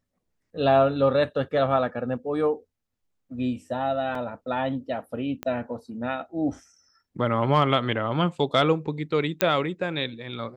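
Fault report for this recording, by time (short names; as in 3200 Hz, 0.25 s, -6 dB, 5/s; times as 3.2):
4.15 gap 3.4 ms
5.43 pop -17 dBFS
9.41 pop -5 dBFS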